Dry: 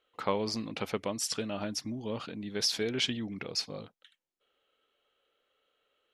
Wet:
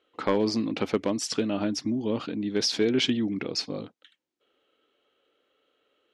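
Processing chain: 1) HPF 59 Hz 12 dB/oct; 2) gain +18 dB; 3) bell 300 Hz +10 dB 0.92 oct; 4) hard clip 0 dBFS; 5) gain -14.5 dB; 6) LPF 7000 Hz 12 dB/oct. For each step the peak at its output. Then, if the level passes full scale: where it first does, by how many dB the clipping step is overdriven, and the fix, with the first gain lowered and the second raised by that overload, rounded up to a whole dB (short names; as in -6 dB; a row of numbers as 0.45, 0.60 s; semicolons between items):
-14.5, +3.5, +6.5, 0.0, -14.5, -14.0 dBFS; step 2, 6.5 dB; step 2 +11 dB, step 5 -7.5 dB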